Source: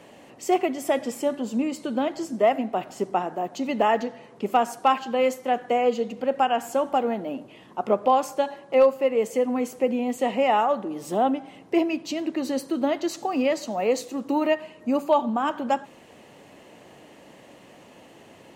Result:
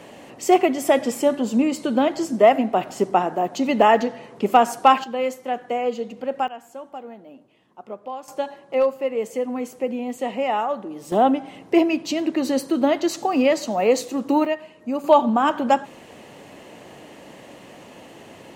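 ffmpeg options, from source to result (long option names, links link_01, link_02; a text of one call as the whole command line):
ffmpeg -i in.wav -af "asetnsamples=nb_out_samples=441:pad=0,asendcmd='5.04 volume volume -2dB;6.48 volume volume -13dB;8.28 volume volume -2dB;11.12 volume volume 5dB;14.45 volume volume -2dB;15.04 volume volume 6dB',volume=6dB" out.wav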